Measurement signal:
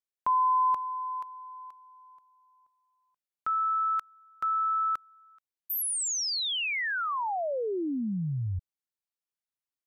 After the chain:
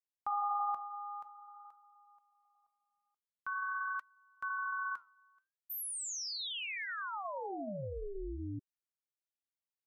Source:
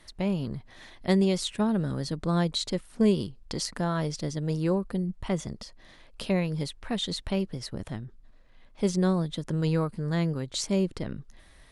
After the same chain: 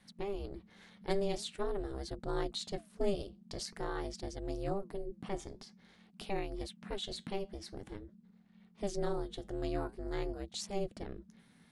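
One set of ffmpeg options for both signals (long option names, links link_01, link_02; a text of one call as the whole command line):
ffmpeg -i in.wav -af "aeval=exprs='val(0)*sin(2*PI*200*n/s)':channel_layout=same,flanger=delay=1.1:depth=9.8:regen=-77:speed=0.47:shape=sinusoidal,volume=-2.5dB" out.wav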